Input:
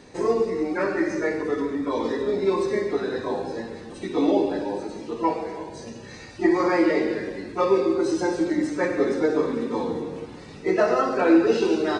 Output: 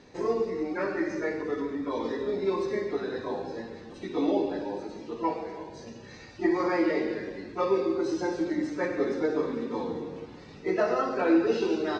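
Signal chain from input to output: LPF 6400 Hz 24 dB/oct; gain -5.5 dB

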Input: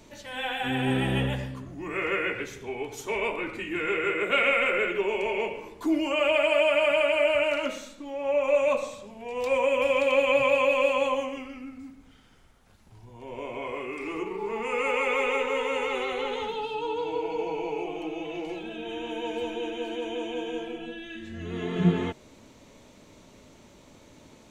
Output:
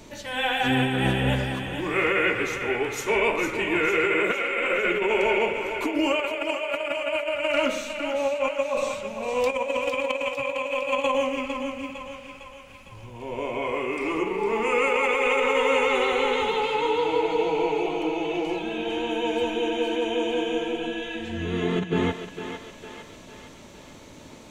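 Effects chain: negative-ratio compressor -27 dBFS, ratio -0.5; on a send: thinning echo 0.455 s, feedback 58%, high-pass 460 Hz, level -7 dB; on the sum: gain +4 dB

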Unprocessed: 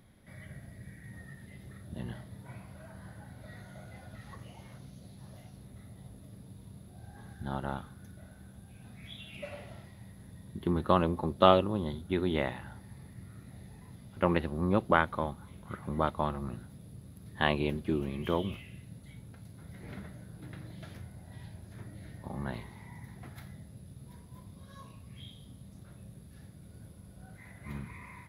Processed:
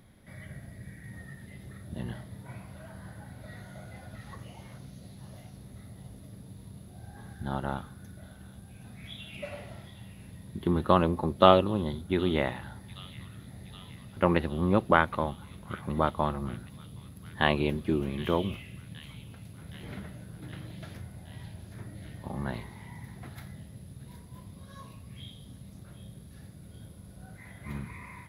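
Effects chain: thin delay 0.769 s, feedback 68%, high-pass 3400 Hz, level -10.5 dB; gain +3 dB

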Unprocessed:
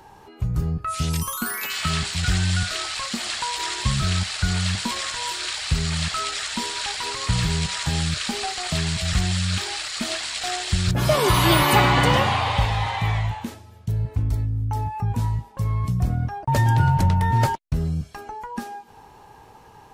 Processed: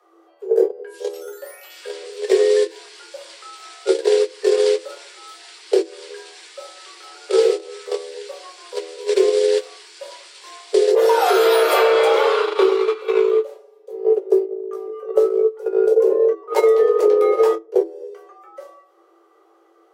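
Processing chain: shoebox room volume 150 m³, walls furnished, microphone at 1.6 m; gate -16 dBFS, range -22 dB; low shelf 440 Hz +8.5 dB; compressor 10:1, threshold -17 dBFS, peak gain reduction 16 dB; frequency shift +330 Hz; gain +5 dB

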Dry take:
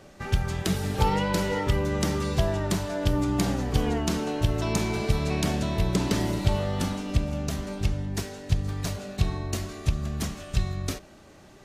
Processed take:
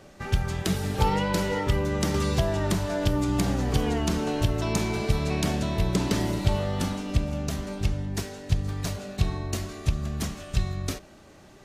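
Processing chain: 2.14–4.49 three-band squash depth 70%

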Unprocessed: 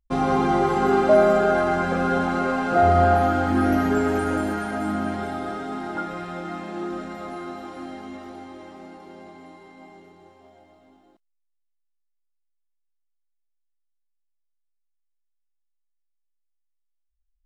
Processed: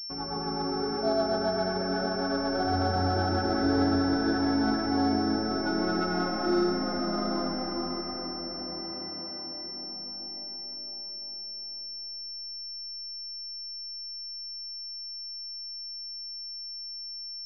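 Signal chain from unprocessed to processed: Doppler pass-by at 6.68, 20 m/s, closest 26 m; rotary speaker horn 8 Hz, later 0.7 Hz, at 3.13; reverb RT60 5.4 s, pre-delay 60 ms, DRR -3 dB; treble ducked by the level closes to 1800 Hz, closed at -36 dBFS; pulse-width modulation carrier 5400 Hz; gain +1.5 dB

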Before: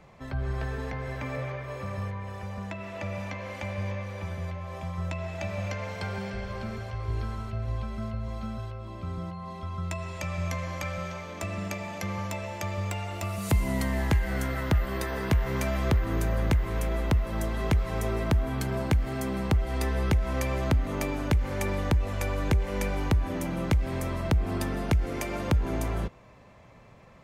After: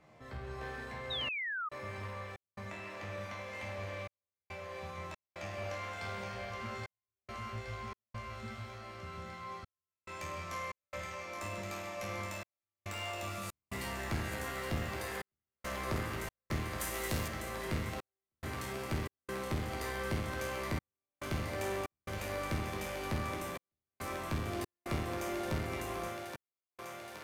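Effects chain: low shelf 70 Hz -6.5 dB; resonator bank D#2 sus4, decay 0.79 s; one-sided clip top -51.5 dBFS; thinning echo 0.822 s, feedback 79%, high-pass 440 Hz, level -6 dB; step gate "xxxxxx..xxx.x" 70 bpm -60 dB; 1.1–1.69 painted sound fall 1200–3900 Hz -49 dBFS; 16.8–17.28 high shelf 4200 Hz +12 dB; gain +11.5 dB

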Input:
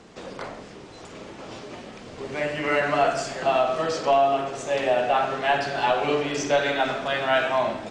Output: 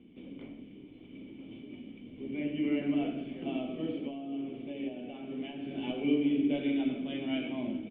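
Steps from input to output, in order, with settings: dynamic EQ 370 Hz, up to +5 dB, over -35 dBFS, Q 0.74; 3.95–5.71 compressor, threshold -23 dBFS, peak gain reduction 9.5 dB; vocal tract filter i; outdoor echo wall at 70 m, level -19 dB; gain +2 dB

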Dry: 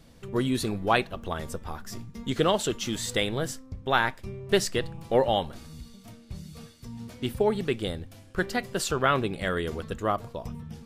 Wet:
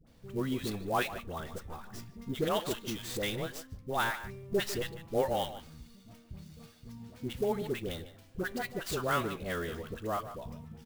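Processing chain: dispersion highs, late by 71 ms, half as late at 830 Hz; speakerphone echo 0.15 s, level -12 dB; clock jitter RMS 0.021 ms; gain -7 dB

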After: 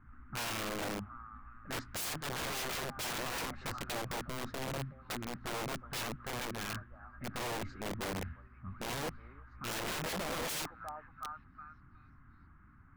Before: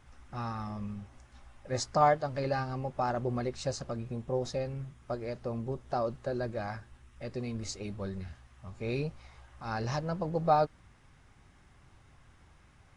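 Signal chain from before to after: low-pass opened by the level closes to 1500 Hz, open at -30.5 dBFS; EQ curve 150 Hz 0 dB, 270 Hz +6 dB, 500 Hz -19 dB, 840 Hz -11 dB, 1300 Hz +7 dB, 6300 Hz -28 dB; delay with a stepping band-pass 0.364 s, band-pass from 720 Hz, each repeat 0.7 oct, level -9 dB; wrapped overs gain 33 dB

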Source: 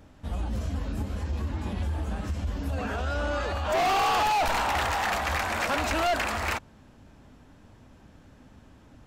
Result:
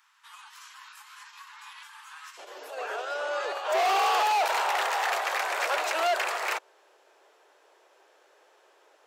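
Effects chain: steep high-pass 950 Hz 72 dB/oct, from 2.37 s 370 Hz

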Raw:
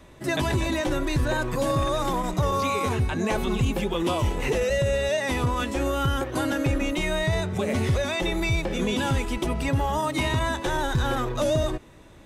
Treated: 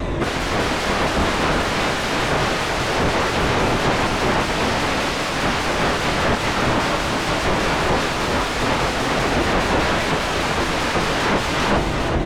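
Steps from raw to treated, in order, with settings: self-modulated delay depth 0.68 ms; high shelf 5900 Hz +9.5 dB; in parallel at -1.5 dB: negative-ratio compressor -28 dBFS; on the sum: soft clip -13 dBFS, distortion -19 dB; resonator 50 Hz, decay 0.59 s, harmonics odd, mix 60%; sine folder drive 19 dB, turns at -17.5 dBFS; tape spacing loss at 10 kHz 23 dB; doubler 25 ms -10.5 dB; on a send: echo 0.381 s -4 dB; on the sum: shaped vibrato saw down 5 Hz, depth 100 cents; gain +4.5 dB

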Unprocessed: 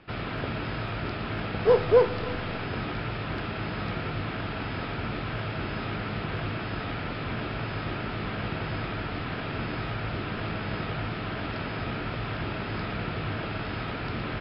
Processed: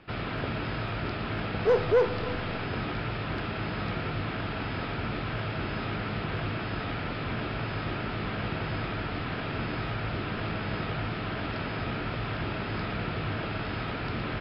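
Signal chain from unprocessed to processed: soft clip -16 dBFS, distortion -15 dB

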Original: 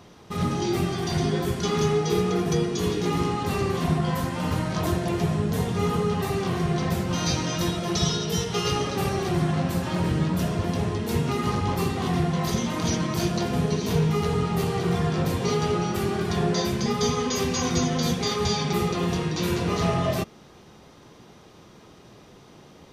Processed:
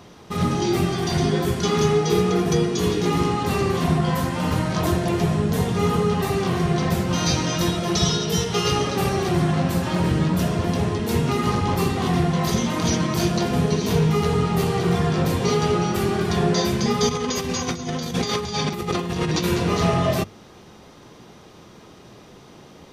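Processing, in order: notches 50/100/150 Hz; 17.09–19.44 negative-ratio compressor -28 dBFS, ratio -0.5; gain +4 dB

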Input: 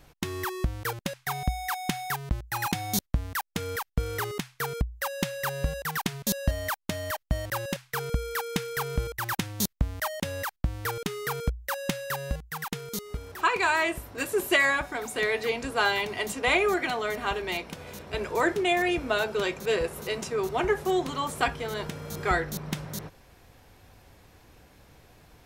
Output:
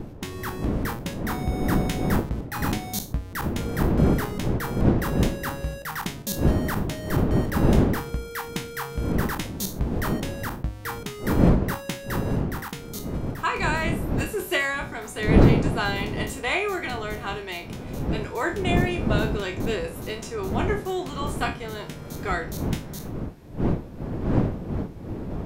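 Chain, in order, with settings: spectral trails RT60 0.31 s; wind noise 260 Hz -23 dBFS; gain -3 dB

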